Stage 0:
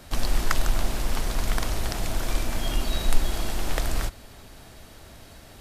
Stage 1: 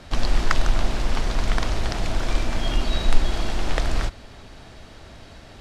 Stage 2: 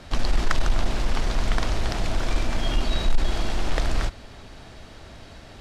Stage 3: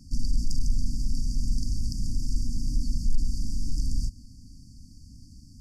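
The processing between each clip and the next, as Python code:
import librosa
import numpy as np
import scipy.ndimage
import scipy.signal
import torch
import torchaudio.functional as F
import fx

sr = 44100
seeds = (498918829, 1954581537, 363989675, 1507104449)

y1 = scipy.signal.sosfilt(scipy.signal.butter(2, 5400.0, 'lowpass', fs=sr, output='sos'), x)
y1 = y1 * librosa.db_to_amplitude(3.5)
y2 = 10.0 ** (-10.0 / 20.0) * np.tanh(y1 / 10.0 ** (-10.0 / 20.0))
y3 = fx.brickwall_bandstop(y2, sr, low_hz=300.0, high_hz=4500.0)
y3 = y3 * librosa.db_to_amplitude(-2.5)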